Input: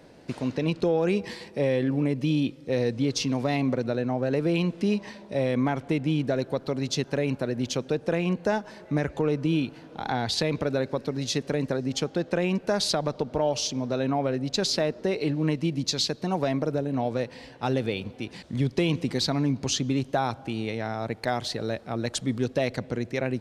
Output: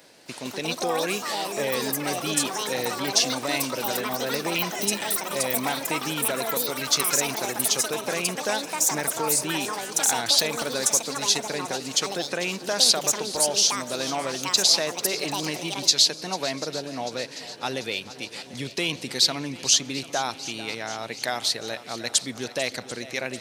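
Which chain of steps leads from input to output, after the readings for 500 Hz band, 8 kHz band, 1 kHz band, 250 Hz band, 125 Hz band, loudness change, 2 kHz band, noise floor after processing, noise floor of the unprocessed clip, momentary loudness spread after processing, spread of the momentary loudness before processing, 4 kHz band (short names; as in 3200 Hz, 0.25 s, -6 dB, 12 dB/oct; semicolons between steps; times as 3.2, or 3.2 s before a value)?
-2.5 dB, +14.5 dB, +3.5 dB, -7.0 dB, -11.0 dB, +3.5 dB, +5.5 dB, -42 dBFS, -48 dBFS, 12 LU, 6 LU, +9.0 dB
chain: tilt +4 dB/oct; swung echo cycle 0.741 s, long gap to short 1.5:1, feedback 58%, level -16 dB; echoes that change speed 0.261 s, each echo +7 st, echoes 3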